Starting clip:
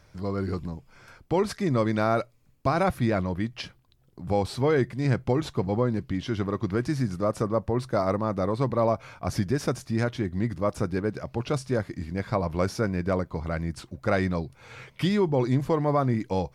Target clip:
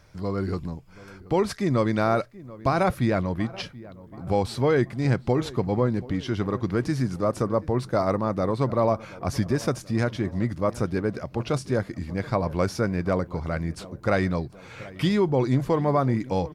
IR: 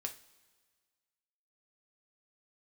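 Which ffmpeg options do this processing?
-filter_complex "[0:a]asplit=2[s0][s1];[s1]adelay=731,lowpass=f=1700:p=1,volume=0.112,asplit=2[s2][s3];[s3]adelay=731,lowpass=f=1700:p=1,volume=0.54,asplit=2[s4][s5];[s5]adelay=731,lowpass=f=1700:p=1,volume=0.54,asplit=2[s6][s7];[s7]adelay=731,lowpass=f=1700:p=1,volume=0.54[s8];[s0][s2][s4][s6][s8]amix=inputs=5:normalize=0,volume=1.19"

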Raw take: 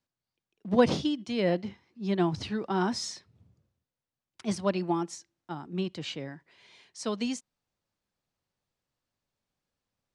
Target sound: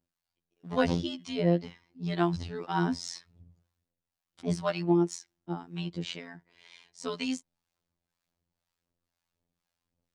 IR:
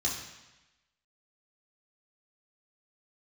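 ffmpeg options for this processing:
-filter_complex "[0:a]aphaser=in_gain=1:out_gain=1:delay=1.5:decay=0.34:speed=1.8:type=triangular,afftfilt=real='hypot(re,im)*cos(PI*b)':imag='0':win_size=2048:overlap=0.75,acrossover=split=690[s0][s1];[s0]aeval=exprs='val(0)*(1-0.7/2+0.7/2*cos(2*PI*2*n/s))':c=same[s2];[s1]aeval=exprs='val(0)*(1-0.7/2-0.7/2*cos(2*PI*2*n/s))':c=same[s3];[s2][s3]amix=inputs=2:normalize=0,volume=1.88"

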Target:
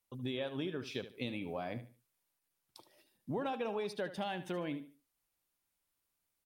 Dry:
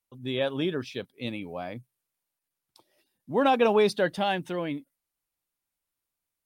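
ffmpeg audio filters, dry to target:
-filter_complex "[0:a]acompressor=threshold=0.0141:ratio=8,asplit=2[s0][s1];[s1]aecho=0:1:74|148|222:0.237|0.064|0.0173[s2];[s0][s2]amix=inputs=2:normalize=0,volume=1.19"

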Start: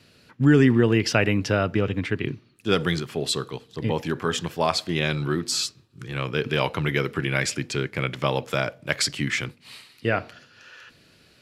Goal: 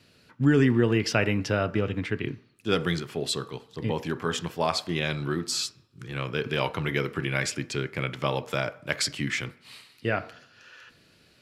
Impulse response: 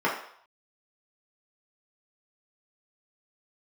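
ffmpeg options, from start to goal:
-filter_complex "[0:a]asplit=2[s0][s1];[1:a]atrim=start_sample=2205,adelay=12[s2];[s1][s2]afir=irnorm=-1:irlink=0,volume=0.0422[s3];[s0][s3]amix=inputs=2:normalize=0,volume=0.668"

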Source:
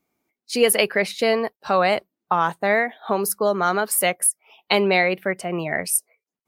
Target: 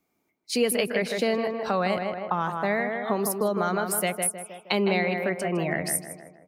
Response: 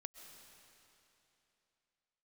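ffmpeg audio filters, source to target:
-filter_complex "[0:a]asplit=2[s0][s1];[s1]adelay=157,lowpass=f=1900:p=1,volume=0.501,asplit=2[s2][s3];[s3]adelay=157,lowpass=f=1900:p=1,volume=0.46,asplit=2[s4][s5];[s5]adelay=157,lowpass=f=1900:p=1,volume=0.46,asplit=2[s6][s7];[s7]adelay=157,lowpass=f=1900:p=1,volume=0.46,asplit=2[s8][s9];[s9]adelay=157,lowpass=f=1900:p=1,volume=0.46,asplit=2[s10][s11];[s11]adelay=157,lowpass=f=1900:p=1,volume=0.46[s12];[s0][s2][s4][s6][s8][s10][s12]amix=inputs=7:normalize=0,acrossover=split=280[s13][s14];[s14]acompressor=threshold=0.0447:ratio=2.5[s15];[s13][s15]amix=inputs=2:normalize=0"

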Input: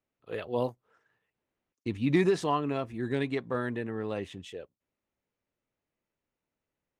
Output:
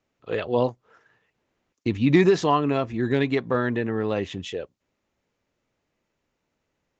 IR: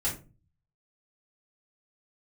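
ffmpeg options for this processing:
-filter_complex "[0:a]asplit=2[s0][s1];[s1]acompressor=threshold=0.0126:ratio=6,volume=0.794[s2];[s0][s2]amix=inputs=2:normalize=0,aresample=16000,aresample=44100,volume=2"

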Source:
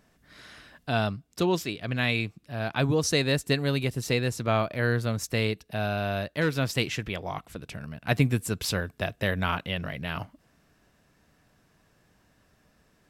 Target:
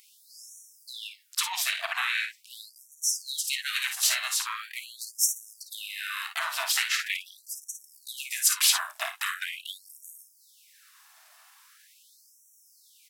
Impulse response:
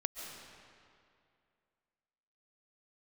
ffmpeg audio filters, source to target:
-filter_complex "[0:a]highpass=f=460:w=0.5412,highpass=f=460:w=1.3066,asplit=2[s0][s1];[s1]alimiter=limit=0.0708:level=0:latency=1:release=172,volume=0.944[s2];[s0][s2]amix=inputs=2:normalize=0,highshelf=f=4600:g=-8,acompressor=threshold=0.0355:ratio=12,aemphasis=mode=production:type=riaa,asplit=3[s3][s4][s5];[s4]asetrate=29433,aresample=44100,atempo=1.49831,volume=0.708[s6];[s5]asetrate=35002,aresample=44100,atempo=1.25992,volume=0.631[s7];[s3][s6][s7]amix=inputs=3:normalize=0,asplit=2[s8][s9];[s9]aecho=0:1:32|54|64:0.224|0.376|0.158[s10];[s8][s10]amix=inputs=2:normalize=0,afftfilt=real='re*gte(b*sr/1024,600*pow(5600/600,0.5+0.5*sin(2*PI*0.42*pts/sr)))':imag='im*gte(b*sr/1024,600*pow(5600/600,0.5+0.5*sin(2*PI*0.42*pts/sr)))':win_size=1024:overlap=0.75"

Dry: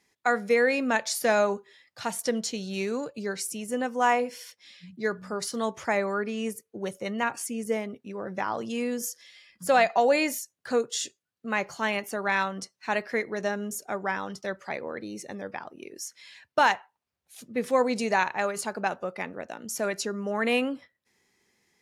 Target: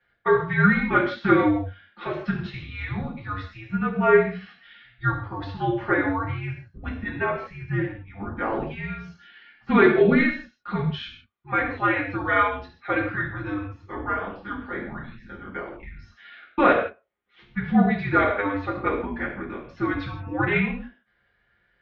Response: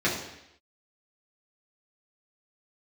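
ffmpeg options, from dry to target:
-filter_complex "[0:a]asettb=1/sr,asplit=3[s0][s1][s2];[s0]atrim=end=13.084[s3];[s1]atrim=start=13.08:end=15.55,asetpts=PTS-STARTPTS,afade=t=in:d=0.004:c=qsin,afade=t=out:st=2.466:d=0.004:c=qsin,flanger=delay=22.5:depth=7.2:speed=2.3[s4];[s2]atrim=start=15.546[s5];[s3][s4]acrossfade=d=0.004:c1=hsin:c2=qsin[s6];[s6][s5]acrossfade=d=0.004:c1=qsin:c2=hsin[s7];[1:a]atrim=start_sample=2205,afade=t=out:st=0.23:d=0.01,atrim=end_sample=10584[s8];[s7][s8]afir=irnorm=-1:irlink=0,highpass=f=440:t=q:w=0.5412,highpass=f=440:t=q:w=1.307,lowpass=f=3600:t=q:w=0.5176,lowpass=f=3600:t=q:w=0.7071,lowpass=f=3600:t=q:w=1.932,afreqshift=-310,volume=0.422"

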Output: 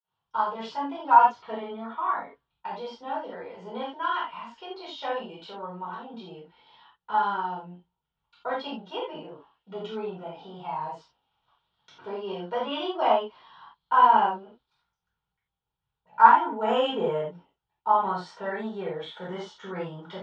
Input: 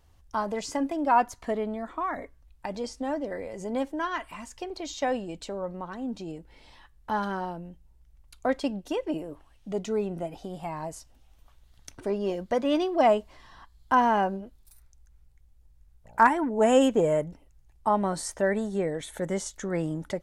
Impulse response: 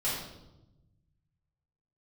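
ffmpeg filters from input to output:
-filter_complex "[0:a]agate=range=0.0224:threshold=0.00355:ratio=3:detection=peak,highpass=230,equalizer=f=290:t=q:w=4:g=-9,equalizer=f=580:t=q:w=4:g=-8,equalizer=f=920:t=q:w=4:g=8,equalizer=f=1400:t=q:w=4:g=6,equalizer=f=2000:t=q:w=4:g=-6,equalizer=f=3300:t=q:w=4:g=7,lowpass=f=4000:w=0.5412,lowpass=f=4000:w=1.3066[s0];[1:a]atrim=start_sample=2205,atrim=end_sample=4410[s1];[s0][s1]afir=irnorm=-1:irlink=0,volume=0.447"

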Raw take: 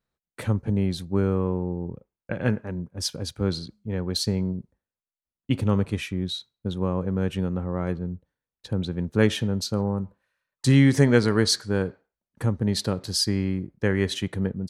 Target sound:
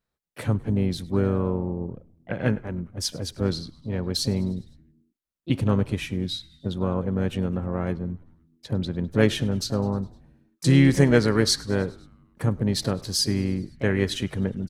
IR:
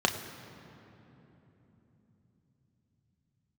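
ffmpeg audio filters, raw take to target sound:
-filter_complex "[0:a]asplit=6[s0][s1][s2][s3][s4][s5];[s1]adelay=102,afreqshift=-84,volume=0.0708[s6];[s2]adelay=204,afreqshift=-168,volume=0.0447[s7];[s3]adelay=306,afreqshift=-252,volume=0.0282[s8];[s4]adelay=408,afreqshift=-336,volume=0.0178[s9];[s5]adelay=510,afreqshift=-420,volume=0.0111[s10];[s0][s6][s7][s8][s9][s10]amix=inputs=6:normalize=0,asplit=2[s11][s12];[s12]asetrate=55563,aresample=44100,atempo=0.793701,volume=0.251[s13];[s11][s13]amix=inputs=2:normalize=0"

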